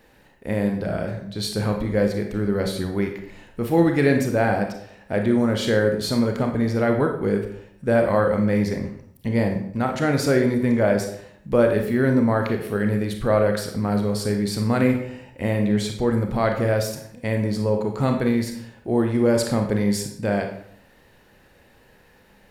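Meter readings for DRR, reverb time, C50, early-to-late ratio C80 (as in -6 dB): 3.5 dB, 0.65 s, 6.5 dB, 10.0 dB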